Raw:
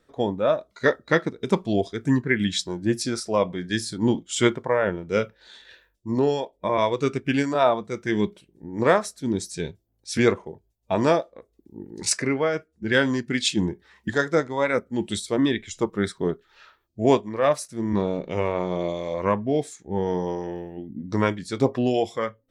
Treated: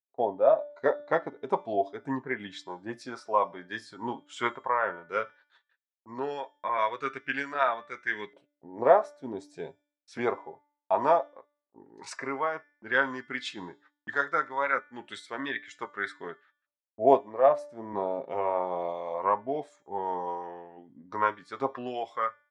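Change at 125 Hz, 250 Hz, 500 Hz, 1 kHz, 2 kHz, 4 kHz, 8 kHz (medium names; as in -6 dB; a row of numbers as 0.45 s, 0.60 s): -20.0 dB, -14.5 dB, -5.0 dB, +0.5 dB, -4.0 dB, -13.5 dB, under -20 dB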